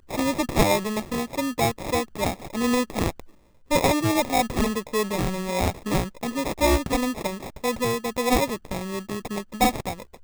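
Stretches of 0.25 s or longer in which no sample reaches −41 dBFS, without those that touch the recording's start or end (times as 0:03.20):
0:03.30–0:03.71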